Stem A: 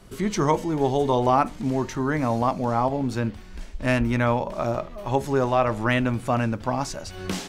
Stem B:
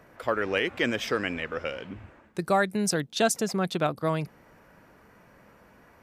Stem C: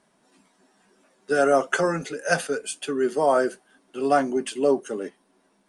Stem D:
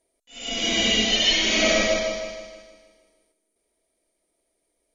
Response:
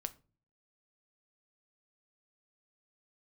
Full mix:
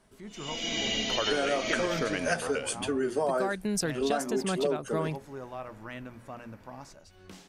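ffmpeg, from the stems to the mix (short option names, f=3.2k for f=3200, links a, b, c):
-filter_complex "[0:a]bandreject=f=60:t=h:w=6,bandreject=f=120:t=h:w=6,bandreject=f=180:t=h:w=6,bandreject=f=240:t=h:w=6,volume=-19dB[a];[1:a]adelay=900,volume=-2dB[b];[2:a]flanger=delay=4.5:depth=9.5:regen=-59:speed=0.41:shape=sinusoidal,volume=2.5dB[c];[3:a]volume=-9dB[d];[a][b][c][d]amix=inputs=4:normalize=0,acompressor=threshold=-24dB:ratio=12"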